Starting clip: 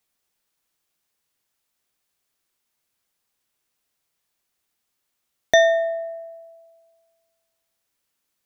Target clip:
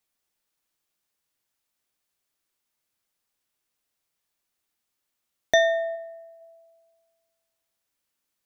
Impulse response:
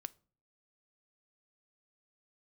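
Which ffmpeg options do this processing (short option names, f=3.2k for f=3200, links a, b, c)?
-filter_complex "[0:a]asplit=3[a][b][c];[a]afade=t=out:st=5.95:d=0.02[d];[b]equalizer=f=240:t=o:w=2.1:g=-11.5,afade=t=in:st=5.95:d=0.02,afade=t=out:st=6.4:d=0.02[e];[c]afade=t=in:st=6.4:d=0.02[f];[d][e][f]amix=inputs=3:normalize=0[g];[1:a]atrim=start_sample=2205,atrim=end_sample=3528[h];[g][h]afir=irnorm=-1:irlink=0"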